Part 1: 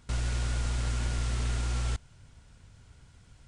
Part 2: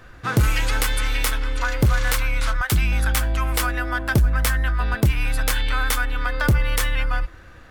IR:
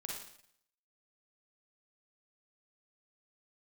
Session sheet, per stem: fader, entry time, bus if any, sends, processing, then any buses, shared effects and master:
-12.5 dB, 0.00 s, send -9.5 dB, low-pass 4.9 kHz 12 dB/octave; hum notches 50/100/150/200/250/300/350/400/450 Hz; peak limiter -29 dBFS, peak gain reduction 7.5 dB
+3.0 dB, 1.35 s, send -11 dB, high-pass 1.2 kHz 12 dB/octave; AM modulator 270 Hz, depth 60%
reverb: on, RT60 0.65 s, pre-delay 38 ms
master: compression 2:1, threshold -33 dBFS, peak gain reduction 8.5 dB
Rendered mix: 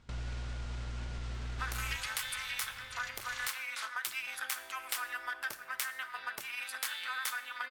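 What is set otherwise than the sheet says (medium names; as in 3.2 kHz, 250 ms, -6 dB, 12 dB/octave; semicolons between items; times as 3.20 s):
stem 1 -12.5 dB -> -4.5 dB; stem 2 +3.0 dB -> -7.0 dB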